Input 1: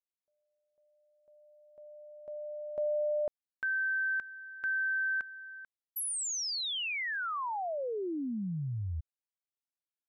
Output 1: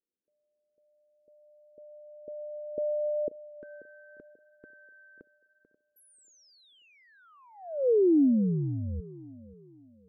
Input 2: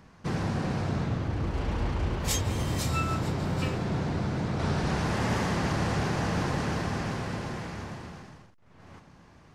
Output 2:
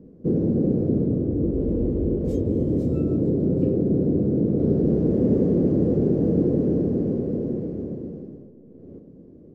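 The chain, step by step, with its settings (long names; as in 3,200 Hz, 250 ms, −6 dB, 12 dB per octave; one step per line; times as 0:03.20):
drawn EQ curve 110 Hz 0 dB, 280 Hz +13 dB, 490 Hz +11 dB, 880 Hz −22 dB, 1,900 Hz −28 dB
on a send: tape delay 536 ms, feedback 42%, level −16.5 dB, low-pass 1,500 Hz
on the sum: level +1.5 dB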